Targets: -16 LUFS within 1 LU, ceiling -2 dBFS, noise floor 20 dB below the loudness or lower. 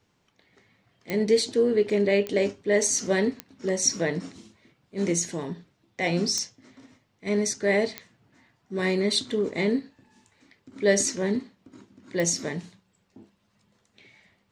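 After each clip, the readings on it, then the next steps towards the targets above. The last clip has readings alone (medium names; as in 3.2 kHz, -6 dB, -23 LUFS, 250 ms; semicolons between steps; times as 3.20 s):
clicks found 6; loudness -25.5 LUFS; peak level -8.0 dBFS; loudness target -16.0 LUFS
-> de-click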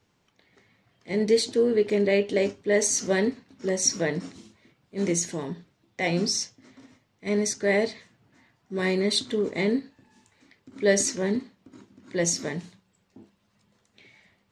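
clicks found 0; loudness -25.5 LUFS; peak level -8.0 dBFS; loudness target -16.0 LUFS
-> trim +9.5 dB; peak limiter -2 dBFS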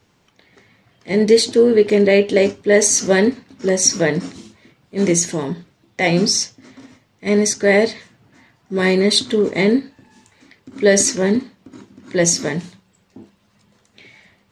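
loudness -16.5 LUFS; peak level -2.0 dBFS; noise floor -60 dBFS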